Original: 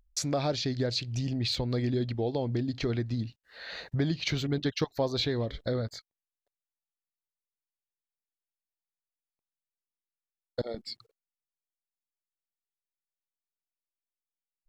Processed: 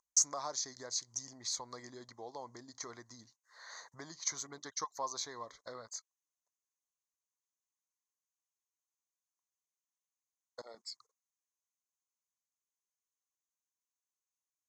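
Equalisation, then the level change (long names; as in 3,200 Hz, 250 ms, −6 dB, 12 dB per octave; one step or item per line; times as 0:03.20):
pair of resonant band-passes 2,600 Hz, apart 2.6 octaves
parametric band 2,000 Hz +11.5 dB 0.34 octaves
high-shelf EQ 4,500 Hz +10.5 dB
+4.5 dB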